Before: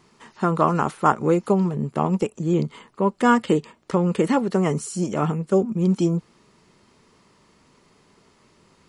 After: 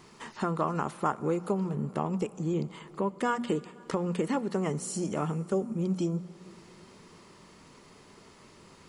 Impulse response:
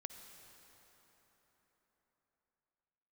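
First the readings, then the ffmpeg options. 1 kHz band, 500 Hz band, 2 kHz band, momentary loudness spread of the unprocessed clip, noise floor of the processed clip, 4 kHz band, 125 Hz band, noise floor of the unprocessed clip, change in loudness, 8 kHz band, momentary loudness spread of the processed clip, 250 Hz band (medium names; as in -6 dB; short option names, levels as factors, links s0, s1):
-10.0 dB, -9.0 dB, -9.5 dB, 6 LU, -55 dBFS, -7.0 dB, -9.0 dB, -59 dBFS, -9.5 dB, -4.5 dB, 6 LU, -9.5 dB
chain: -filter_complex "[0:a]bandreject=f=60:t=h:w=6,bandreject=f=120:t=h:w=6,bandreject=f=180:t=h:w=6,bandreject=f=240:t=h:w=6,acompressor=threshold=0.01:ratio=2,asplit=2[s0][s1];[1:a]atrim=start_sample=2205,highshelf=f=8400:g=7.5[s2];[s1][s2]afir=irnorm=-1:irlink=0,volume=0.531[s3];[s0][s3]amix=inputs=2:normalize=0,volume=1.12"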